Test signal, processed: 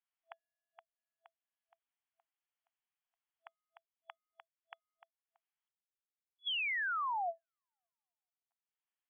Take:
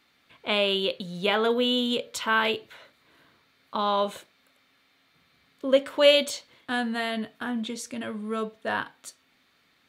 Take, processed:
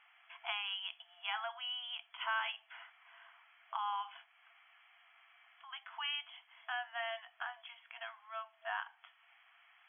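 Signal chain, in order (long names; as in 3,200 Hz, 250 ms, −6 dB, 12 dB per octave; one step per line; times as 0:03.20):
downward compressor 2 to 1, threshold −46 dBFS
brick-wall band-pass 660–3,400 Hz
level +2 dB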